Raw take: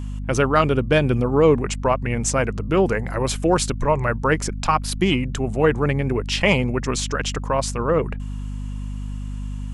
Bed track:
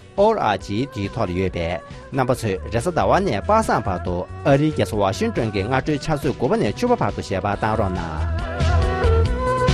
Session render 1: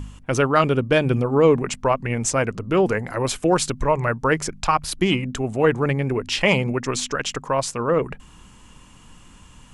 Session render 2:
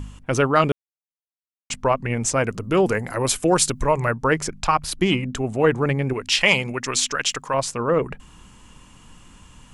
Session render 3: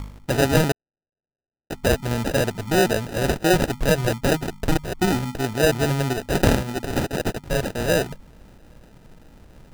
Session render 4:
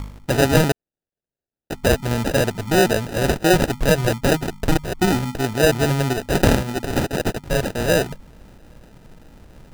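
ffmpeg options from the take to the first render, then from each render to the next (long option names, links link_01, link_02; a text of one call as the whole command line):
ffmpeg -i in.wav -af "bandreject=frequency=50:width_type=h:width=4,bandreject=frequency=100:width_type=h:width=4,bandreject=frequency=150:width_type=h:width=4,bandreject=frequency=200:width_type=h:width=4,bandreject=frequency=250:width_type=h:width=4" out.wav
ffmpeg -i in.wav -filter_complex "[0:a]asettb=1/sr,asplit=3[link_01][link_02][link_03];[link_01]atrim=end=2.444[link_04];[link_02]atrim=start=2.44:end=4.11,asetpts=PTS-STARTPTS,afade=type=in:duration=0.004:curve=qsin,afade=type=out:start_time=1.666:duration=0.004:curve=qsin,highshelf=frequency=6900:gain=11.5[link_05];[link_03]atrim=start=4.106[link_06];[link_04][link_05]acrossfade=duration=0.004:curve1=hsin:curve2=qsin[link_07];[link_07][link_06]acrossfade=duration=0.004:curve1=qsin:curve2=hsin,asettb=1/sr,asplit=3[link_08][link_09][link_10];[link_08]atrim=end=6.134[link_11];[link_09]atrim=start=6.13:end=7.54,asetpts=PTS-STARTPTS,afade=type=in:duration=0.004:curve=qsin,afade=type=out:start_time=1.406:duration=0.004:curve=qsin,tiltshelf=frequency=1100:gain=-6[link_12];[link_10]atrim=start=7.536[link_13];[link_11][link_12]acrossfade=duration=0.004:curve1=hsin:curve2=qsin[link_14];[link_14][link_13]acrossfade=duration=0.004:curve1=qsin:curve2=hsin,asplit=3[link_15][link_16][link_17];[link_15]atrim=end=0.72,asetpts=PTS-STARTPTS,afade=type=out:start_time=0.716:duration=0.004:curve=hsin[link_18];[link_16]atrim=start=0.72:end=1.7,asetpts=PTS-STARTPTS,volume=0[link_19];[link_17]atrim=start=1.7,asetpts=PTS-STARTPTS,afade=type=in:duration=0.004:curve=hsin[link_20];[link_18][link_19][link_20]concat=n=3:v=0:a=1" out.wav
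ffmpeg -i in.wav -af "acrusher=samples=40:mix=1:aa=0.000001" out.wav
ffmpeg -i in.wav -af "volume=2.5dB,alimiter=limit=-2dB:level=0:latency=1" out.wav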